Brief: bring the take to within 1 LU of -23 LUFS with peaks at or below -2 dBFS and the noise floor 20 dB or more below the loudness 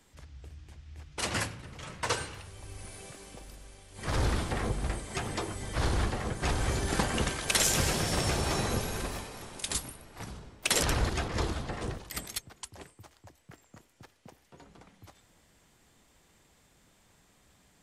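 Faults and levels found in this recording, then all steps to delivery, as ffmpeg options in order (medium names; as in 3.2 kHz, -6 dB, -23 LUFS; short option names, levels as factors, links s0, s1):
loudness -31.5 LUFS; peak level -12.5 dBFS; loudness target -23.0 LUFS
-> -af "volume=2.66"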